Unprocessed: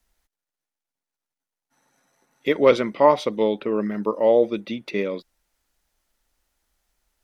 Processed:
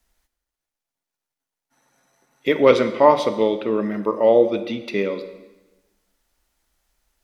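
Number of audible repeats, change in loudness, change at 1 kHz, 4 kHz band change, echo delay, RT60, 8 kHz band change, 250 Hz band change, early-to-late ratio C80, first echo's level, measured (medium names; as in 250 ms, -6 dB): no echo, +2.5 dB, +2.5 dB, +2.5 dB, no echo, 1.1 s, no reading, +2.5 dB, 13.0 dB, no echo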